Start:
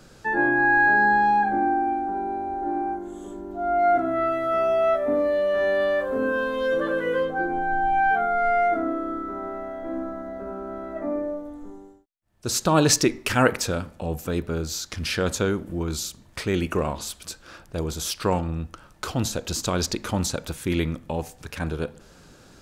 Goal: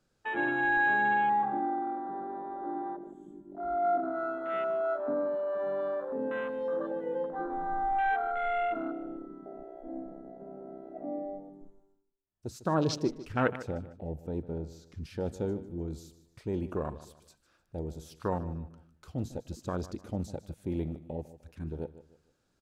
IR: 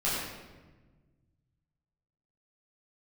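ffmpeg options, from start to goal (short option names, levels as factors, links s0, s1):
-filter_complex "[0:a]afwtdn=0.0631,asettb=1/sr,asplit=3[s0][s1][s2];[s0]atrim=end=12.714[s3];[s1]atrim=start=12.71:end=15.04,asetpts=PTS-STARTPTS,afade=t=in:d=0.004:c=qsin,afade=t=out:st=2.326:d=0.004:c=qsin,highshelf=f=5500:g=-8.5[s4];[s2]atrim=start=15.036[s5];[s3][s4]acrossfade=d=0.004:c1=hsin:c2=qsin[s6];[s6][s5]acrossfade=d=0.004:c1=qsin:c2=hsin,aecho=1:1:151|302|453:0.168|0.0571|0.0194,volume=0.376"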